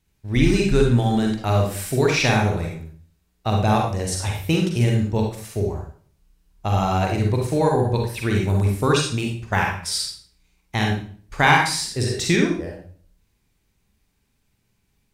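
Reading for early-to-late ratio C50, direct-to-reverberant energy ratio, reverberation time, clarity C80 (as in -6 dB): 3.0 dB, 0.0 dB, 0.50 s, 8.0 dB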